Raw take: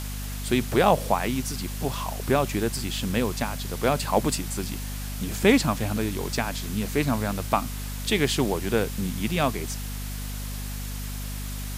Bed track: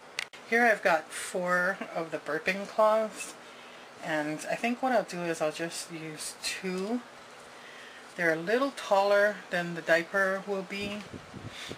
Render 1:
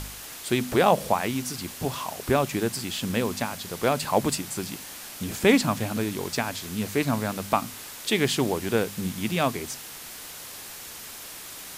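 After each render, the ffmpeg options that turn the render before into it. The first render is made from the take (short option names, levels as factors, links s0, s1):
-af "bandreject=f=50:t=h:w=4,bandreject=f=100:t=h:w=4,bandreject=f=150:t=h:w=4,bandreject=f=200:t=h:w=4,bandreject=f=250:t=h:w=4"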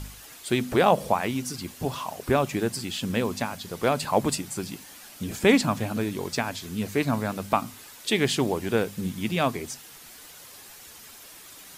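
-af "afftdn=nr=8:nf=-41"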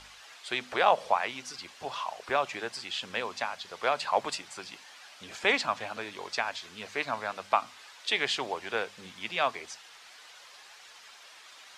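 -filter_complex "[0:a]lowpass=8900,acrossover=split=570 5600:gain=0.0708 1 0.2[s0][s1][s2];[s0][s1][s2]amix=inputs=3:normalize=0"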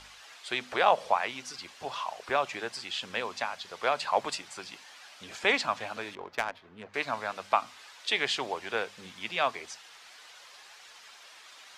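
-filter_complex "[0:a]asettb=1/sr,asplit=3[s0][s1][s2];[s0]atrim=end=6.154[s3];[s1]atrim=start=6.15:end=6.94,asetpts=PTS-STARTPTS,afade=t=in:d=0.004:c=qsin,afade=t=out:st=0.786:d=0.004:c=qsin,adynamicsmooth=sensitivity=2.5:basefreq=980[s4];[s2]atrim=start=6.936[s5];[s3][s4]acrossfade=d=0.004:c1=hsin:c2=qsin[s6];[s6][s5]acrossfade=d=0.004:c1=qsin:c2=hsin"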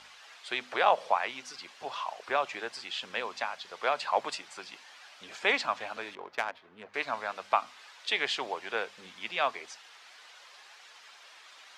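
-af "highpass=f=360:p=1,highshelf=f=7000:g=-9"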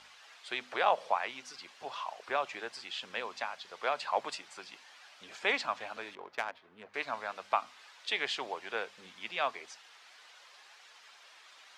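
-af "volume=0.668"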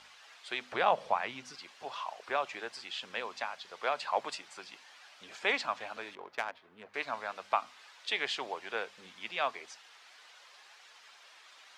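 -filter_complex "[0:a]asettb=1/sr,asplit=3[s0][s1][s2];[s0]atrim=end=0.724[s3];[s1]atrim=start=0.72:end=1.55,asetpts=PTS-STARTPTS,afade=t=in:d=0.004:c=qsin,afade=t=out:st=0.826:d=0.004:c=qsin,bass=f=250:g=13,treble=f=4000:g=-2[s4];[s2]atrim=start=1.546[s5];[s3][s4]acrossfade=d=0.004:c1=hsin:c2=qsin[s6];[s6][s5]acrossfade=d=0.004:c1=qsin:c2=hsin"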